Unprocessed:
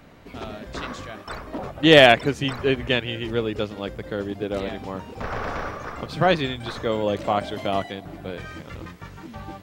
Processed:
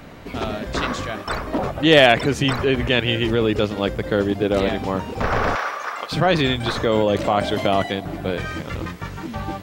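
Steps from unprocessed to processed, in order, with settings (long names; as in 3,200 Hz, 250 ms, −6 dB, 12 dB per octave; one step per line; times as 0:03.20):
in parallel at +2.5 dB: compressor whose output falls as the input rises −26 dBFS, ratio −1
0:05.55–0:06.12: on the sum: high-pass filter 830 Hz 12 dB per octave
level −1 dB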